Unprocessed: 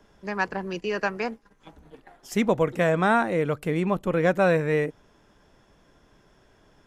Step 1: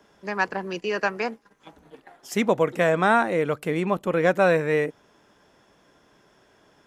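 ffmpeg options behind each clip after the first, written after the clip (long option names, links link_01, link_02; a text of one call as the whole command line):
ffmpeg -i in.wav -af "highpass=frequency=240:poles=1,volume=2.5dB" out.wav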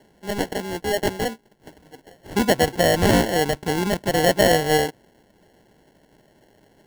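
ffmpeg -i in.wav -af "acrusher=samples=36:mix=1:aa=0.000001,volume=2.5dB" out.wav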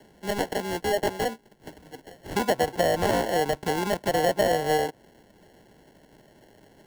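ffmpeg -i in.wav -filter_complex "[0:a]acrossover=split=480|1100[link_01][link_02][link_03];[link_01]acompressor=threshold=-33dB:ratio=4[link_04];[link_02]acompressor=threshold=-23dB:ratio=4[link_05];[link_03]acompressor=threshold=-33dB:ratio=4[link_06];[link_04][link_05][link_06]amix=inputs=3:normalize=0,volume=1.5dB" out.wav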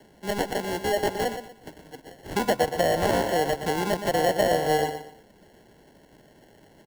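ffmpeg -i in.wav -af "aecho=1:1:119|238|357:0.355|0.103|0.0298" out.wav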